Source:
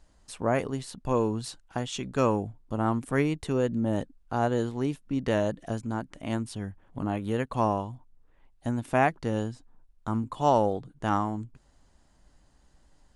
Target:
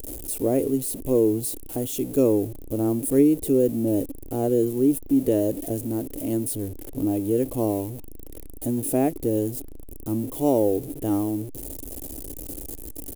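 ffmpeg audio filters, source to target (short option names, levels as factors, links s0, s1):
-af "aeval=exprs='val(0)+0.5*0.0237*sgn(val(0))':c=same,firequalizer=gain_entry='entry(100,0);entry(200,-6);entry(280,10);entry(430,7);entry(990,-16);entry(1500,-18);entry(2500,-10);entry(4700,-8);entry(11000,14)':delay=0.05:min_phase=1"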